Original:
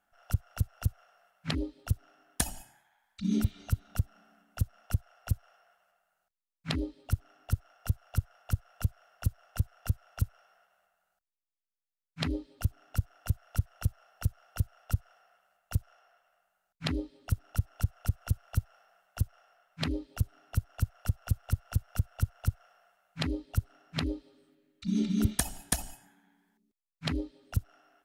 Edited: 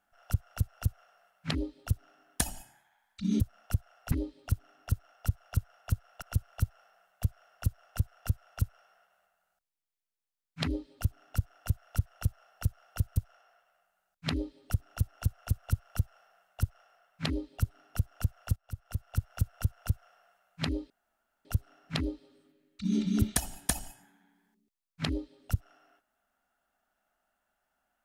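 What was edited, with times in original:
0:03.40–0:04.60: remove
0:05.32–0:06.73: remove
0:14.76–0:15.74: remove
0:18.17–0:19.18: duplicate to 0:08.83
0:21.14–0:21.87: fade in, from −22 dB
0:23.48: splice in room tone 0.55 s

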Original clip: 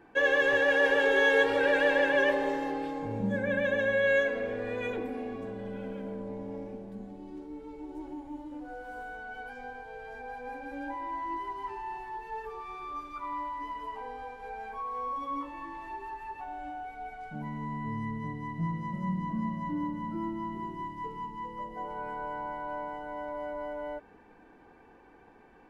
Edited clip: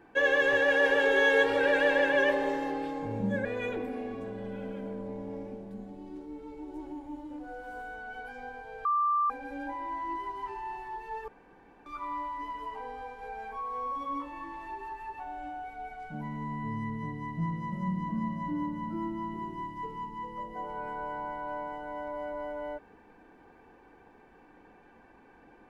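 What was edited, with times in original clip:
0:03.45–0:04.66: remove
0:10.06–0:10.51: beep over 1,180 Hz −23.5 dBFS
0:12.49–0:13.07: fill with room tone

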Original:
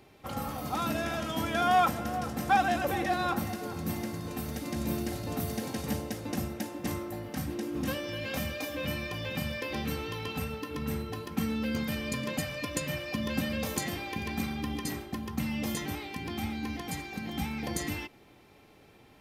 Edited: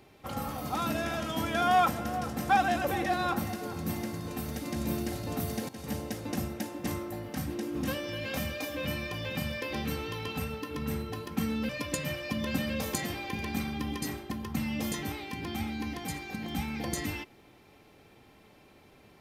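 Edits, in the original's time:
0:05.69–0:06.18: fade in equal-power, from −14.5 dB
0:11.69–0:12.52: remove

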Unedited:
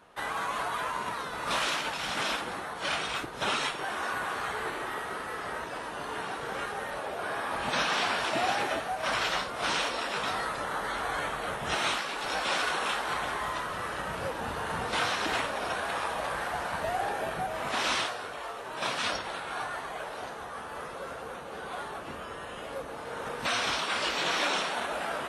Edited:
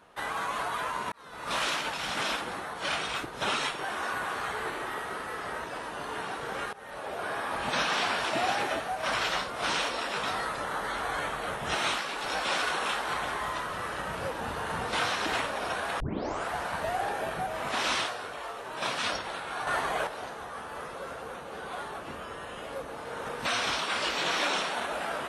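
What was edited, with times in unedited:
0:01.12–0:01.62: fade in
0:06.73–0:07.14: fade in, from −18.5 dB
0:16.00: tape start 0.50 s
0:19.67–0:20.07: clip gain +7.5 dB

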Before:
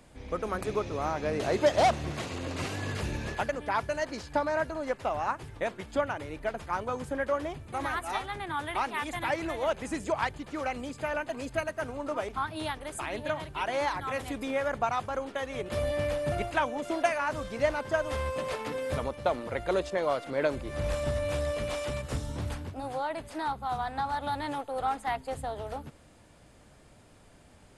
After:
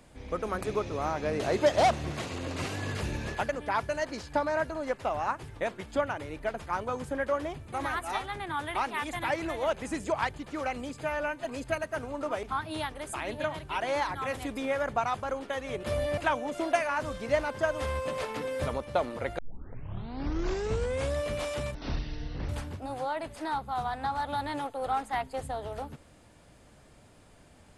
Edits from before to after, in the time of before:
0:11.01–0:11.30: time-stretch 1.5×
0:16.03–0:16.48: remove
0:19.69: tape start 1.77 s
0:22.05–0:22.43: play speed 51%

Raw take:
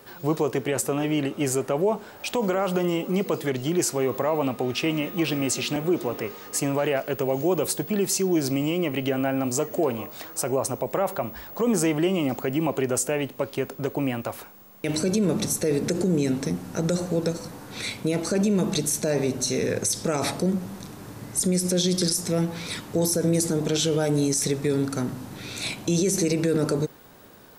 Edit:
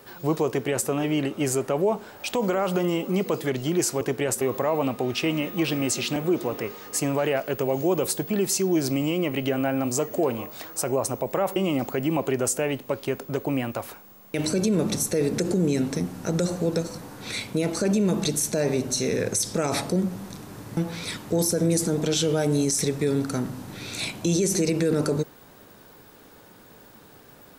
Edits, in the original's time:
0:00.48–0:00.88: duplicate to 0:04.01
0:11.16–0:12.06: remove
0:21.27–0:22.40: remove

